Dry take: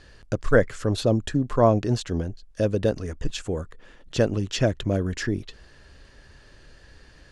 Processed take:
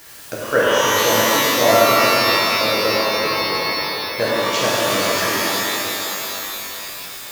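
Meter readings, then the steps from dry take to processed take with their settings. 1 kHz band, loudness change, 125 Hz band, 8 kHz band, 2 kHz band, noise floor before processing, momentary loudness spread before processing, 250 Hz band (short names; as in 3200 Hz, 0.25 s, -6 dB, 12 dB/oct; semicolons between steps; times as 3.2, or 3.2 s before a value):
+14.5 dB, +8.0 dB, -7.5 dB, +17.5 dB, +15.5 dB, -52 dBFS, 12 LU, +0.5 dB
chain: AM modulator 72 Hz, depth 35%; weighting filter A; in parallel at -10 dB: requantised 6-bit, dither triangular; on the sum: spectral delete 1.28–4.18, 780–9100 Hz; shimmer reverb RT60 3.5 s, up +12 st, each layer -2 dB, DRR -7 dB; gain +1 dB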